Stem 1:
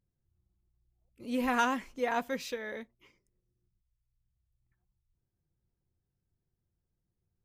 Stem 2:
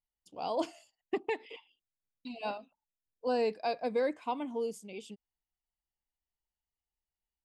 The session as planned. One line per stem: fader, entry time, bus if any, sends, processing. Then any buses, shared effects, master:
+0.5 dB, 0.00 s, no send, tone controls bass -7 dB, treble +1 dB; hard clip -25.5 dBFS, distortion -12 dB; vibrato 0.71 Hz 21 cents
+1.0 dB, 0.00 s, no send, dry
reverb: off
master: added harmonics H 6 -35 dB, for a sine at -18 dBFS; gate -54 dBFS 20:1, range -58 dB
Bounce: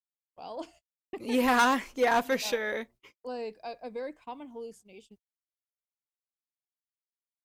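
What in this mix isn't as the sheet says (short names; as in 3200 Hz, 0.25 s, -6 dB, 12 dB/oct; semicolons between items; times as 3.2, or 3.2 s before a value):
stem 1 +0.5 dB -> +8.0 dB; stem 2 +1.0 dB -> -7.0 dB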